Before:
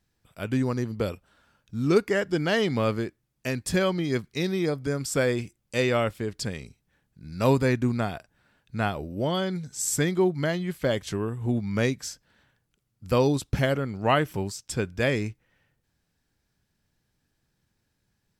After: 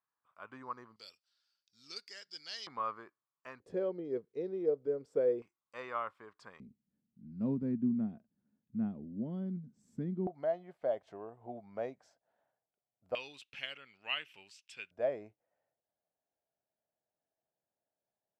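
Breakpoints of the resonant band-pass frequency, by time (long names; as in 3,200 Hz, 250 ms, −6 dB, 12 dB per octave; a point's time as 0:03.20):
resonant band-pass, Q 5.9
1,100 Hz
from 0:00.96 4,800 Hz
from 0:02.67 1,100 Hz
from 0:03.60 460 Hz
from 0:05.42 1,100 Hz
from 0:06.60 220 Hz
from 0:10.27 680 Hz
from 0:13.15 2,700 Hz
from 0:14.91 650 Hz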